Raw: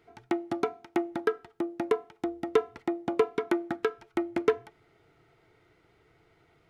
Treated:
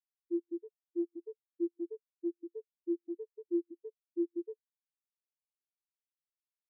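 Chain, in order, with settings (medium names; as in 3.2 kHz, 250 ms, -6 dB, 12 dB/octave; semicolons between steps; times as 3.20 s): bit-reversed sample order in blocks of 32 samples; level held to a coarse grid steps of 18 dB; distance through air 390 m; spectral contrast expander 4:1; trim +5 dB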